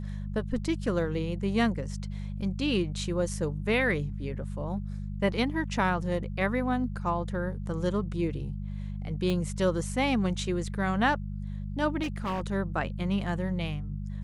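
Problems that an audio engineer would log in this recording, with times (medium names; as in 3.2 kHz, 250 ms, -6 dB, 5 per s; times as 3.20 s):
hum 50 Hz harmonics 4 -35 dBFS
9.30 s: pop -19 dBFS
12.02–12.41 s: clipped -27.5 dBFS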